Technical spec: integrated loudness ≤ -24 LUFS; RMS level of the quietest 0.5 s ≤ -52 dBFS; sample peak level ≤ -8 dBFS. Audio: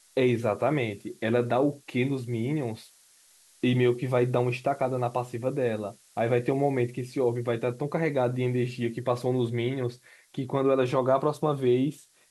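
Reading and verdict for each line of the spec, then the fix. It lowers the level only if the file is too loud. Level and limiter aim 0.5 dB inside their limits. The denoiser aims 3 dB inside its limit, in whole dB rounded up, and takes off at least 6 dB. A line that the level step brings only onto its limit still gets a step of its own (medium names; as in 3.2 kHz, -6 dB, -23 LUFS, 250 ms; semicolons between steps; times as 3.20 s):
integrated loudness -27.5 LUFS: pass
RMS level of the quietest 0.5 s -59 dBFS: pass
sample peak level -10.5 dBFS: pass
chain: none needed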